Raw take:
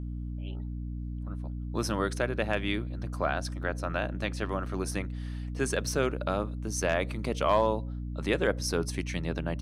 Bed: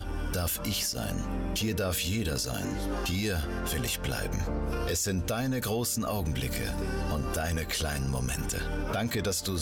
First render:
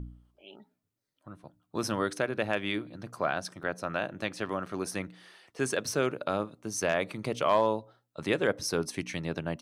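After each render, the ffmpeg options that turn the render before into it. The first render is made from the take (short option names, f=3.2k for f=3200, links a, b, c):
-af "bandreject=f=60:t=h:w=4,bandreject=f=120:t=h:w=4,bandreject=f=180:t=h:w=4,bandreject=f=240:t=h:w=4,bandreject=f=300:t=h:w=4"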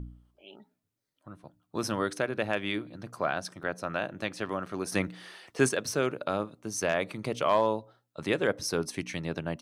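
-filter_complex "[0:a]asettb=1/sr,asplit=3[a][b][c];[a]atrim=end=4.924[d];[b]atrim=start=4.92:end=5.69,asetpts=PTS-STARTPTS,afade=t=in:d=0.004:c=qsin,afade=t=out:st=0.766:d=0.004:c=qsin,acontrast=65[e];[c]atrim=start=5.686[f];[d][e]acrossfade=d=0.004:c1=hsin:c2=qsin[g];[g][f]acrossfade=d=0.004:c1=qsin:c2=hsin"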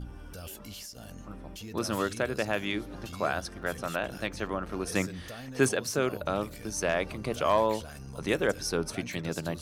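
-filter_complex "[1:a]volume=-13dB[a];[0:a][a]amix=inputs=2:normalize=0"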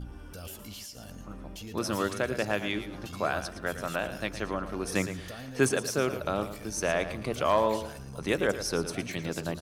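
-af "aecho=1:1:113|226|339:0.266|0.0772|0.0224"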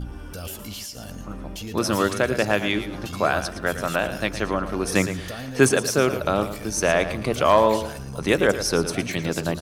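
-af "volume=8dB"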